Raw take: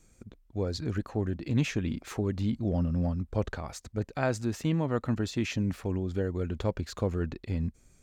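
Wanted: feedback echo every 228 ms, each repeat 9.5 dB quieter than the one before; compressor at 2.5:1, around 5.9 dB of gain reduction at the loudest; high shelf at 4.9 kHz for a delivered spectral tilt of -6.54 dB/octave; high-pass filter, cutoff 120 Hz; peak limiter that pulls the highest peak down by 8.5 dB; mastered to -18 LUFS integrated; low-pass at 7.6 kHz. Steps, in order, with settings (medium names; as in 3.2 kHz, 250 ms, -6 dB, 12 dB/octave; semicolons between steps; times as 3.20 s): high-pass 120 Hz; low-pass 7.6 kHz; treble shelf 4.9 kHz -7 dB; compression 2.5:1, threshold -32 dBFS; peak limiter -26 dBFS; feedback delay 228 ms, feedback 33%, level -9.5 dB; trim +20 dB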